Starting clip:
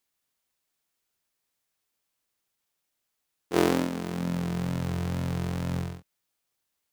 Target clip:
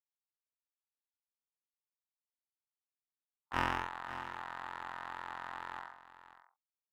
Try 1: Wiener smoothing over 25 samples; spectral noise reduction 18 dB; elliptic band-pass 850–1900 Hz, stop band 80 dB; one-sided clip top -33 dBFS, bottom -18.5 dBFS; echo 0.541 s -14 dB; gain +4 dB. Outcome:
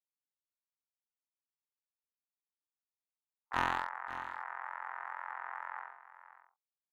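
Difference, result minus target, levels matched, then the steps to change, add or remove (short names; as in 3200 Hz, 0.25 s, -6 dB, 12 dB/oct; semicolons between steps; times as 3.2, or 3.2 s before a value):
one-sided clip: distortion -4 dB
change: one-sided clip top -42 dBFS, bottom -18.5 dBFS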